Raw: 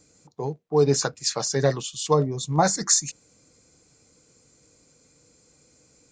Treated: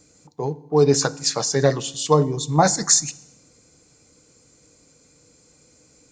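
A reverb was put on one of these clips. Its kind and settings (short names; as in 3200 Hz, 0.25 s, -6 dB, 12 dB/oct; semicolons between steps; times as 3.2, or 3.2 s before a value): FDN reverb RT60 0.9 s, low-frequency decay 1.45×, high-frequency decay 0.95×, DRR 17 dB; gain +3.5 dB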